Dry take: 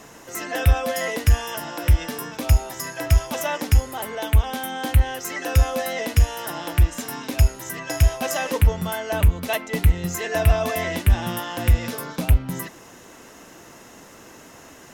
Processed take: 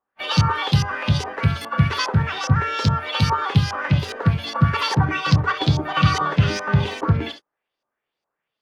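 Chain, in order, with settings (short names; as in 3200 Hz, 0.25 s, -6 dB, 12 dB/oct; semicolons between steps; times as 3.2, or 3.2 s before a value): notches 50/100/150/200/250/300 Hz; gate -35 dBFS, range -40 dB; non-linear reverb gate 0.14 s rising, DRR 9.5 dB; harmoniser +4 st -8 dB; LFO low-pass saw up 1.4 Hz 550–3400 Hz; speed mistake 45 rpm record played at 78 rpm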